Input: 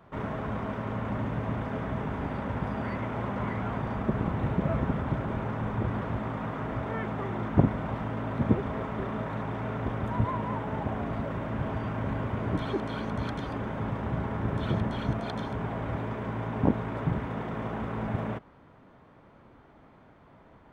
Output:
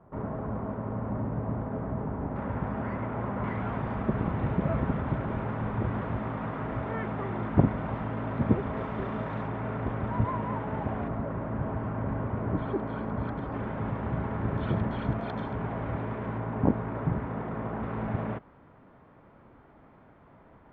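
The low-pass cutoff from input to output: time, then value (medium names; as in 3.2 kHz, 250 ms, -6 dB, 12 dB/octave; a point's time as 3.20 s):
1 kHz
from 2.36 s 1.8 kHz
from 3.44 s 2.9 kHz
from 8.77 s 4 kHz
from 9.47 s 2.5 kHz
from 11.08 s 1.5 kHz
from 13.54 s 2.5 kHz
from 16.38 s 1.8 kHz
from 17.83 s 2.5 kHz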